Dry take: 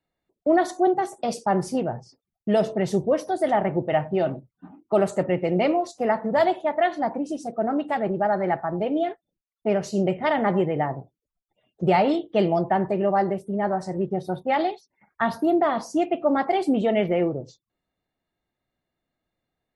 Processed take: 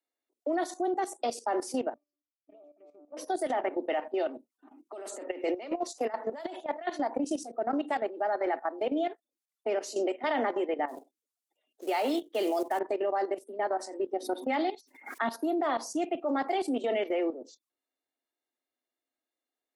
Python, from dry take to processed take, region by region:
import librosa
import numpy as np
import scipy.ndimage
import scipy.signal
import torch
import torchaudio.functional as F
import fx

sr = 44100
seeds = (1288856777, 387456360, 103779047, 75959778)

y = fx.chain(x, sr, fx.env_flanger(rest_ms=6.9, full_db=-16.5),
    fx.octave_resonator(note='D', decay_s=0.37),
    fx.doppler_dist(depth_ms=0.18), at=(1.94, 3.17))
y = fx.chain(y, sr, fx.low_shelf(hz=110.0, db=-12.0),
    fx.over_compress(threshold_db=-26.0, ratio=-1.0), at=(4.78, 7.39))
y = fx.chain(y, sr, fx.high_shelf(hz=3200.0, db=3.5),
    fx.quant_float(bits=4), at=(10.88, 12.79))
y = fx.chain(y, sr, fx.small_body(hz=(260.0, 2100.0), ring_ms=35, db=8),
    fx.pre_swell(db_per_s=120.0), at=(14.22, 15.29))
y = scipy.signal.sosfilt(scipy.signal.butter(16, 240.0, 'highpass', fs=sr, output='sos'), y)
y = fx.peak_eq(y, sr, hz=9400.0, db=8.5, octaves=2.1)
y = fx.level_steps(y, sr, step_db=13)
y = F.gain(torch.from_numpy(y), -2.0).numpy()